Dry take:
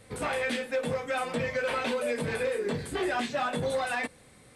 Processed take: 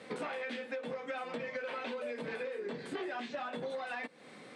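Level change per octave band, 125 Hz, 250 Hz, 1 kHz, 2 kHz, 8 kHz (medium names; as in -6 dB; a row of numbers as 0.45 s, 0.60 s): -15.5 dB, -8.5 dB, -9.5 dB, -9.0 dB, -18.0 dB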